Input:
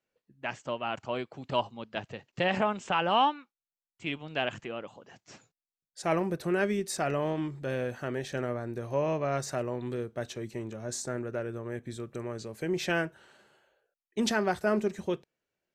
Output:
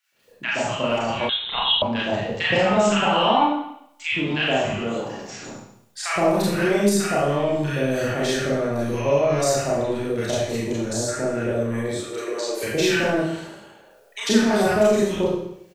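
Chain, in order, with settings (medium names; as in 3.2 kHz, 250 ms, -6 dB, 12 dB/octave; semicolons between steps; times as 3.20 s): 11.81–12.51 s: steep high-pass 340 Hz 48 dB/octave; transient shaper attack +6 dB, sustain +10 dB; bands offset in time highs, lows 120 ms, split 1.2 kHz; Schroeder reverb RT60 0.64 s, combs from 27 ms, DRR -7.5 dB; 1.29–1.82 s: frequency inversion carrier 3.9 kHz; three bands compressed up and down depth 40%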